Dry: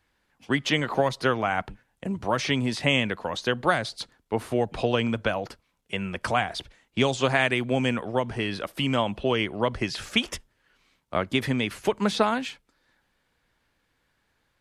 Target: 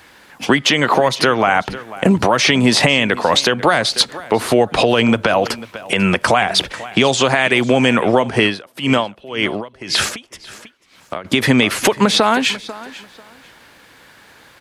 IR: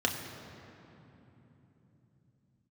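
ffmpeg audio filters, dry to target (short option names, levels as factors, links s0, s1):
-filter_complex "[0:a]highpass=f=240:p=1,acompressor=threshold=0.0158:ratio=6,aecho=1:1:493|986:0.112|0.0236,alimiter=level_in=25.1:limit=0.891:release=50:level=0:latency=1,asplit=3[s0][s1][s2];[s0]afade=t=out:st=8.29:d=0.02[s3];[s1]aeval=exprs='val(0)*pow(10,-25*(0.5-0.5*cos(2*PI*1.9*n/s))/20)':c=same,afade=t=in:st=8.29:d=0.02,afade=t=out:st=11.24:d=0.02[s4];[s2]afade=t=in:st=11.24:d=0.02[s5];[s3][s4][s5]amix=inputs=3:normalize=0,volume=0.891"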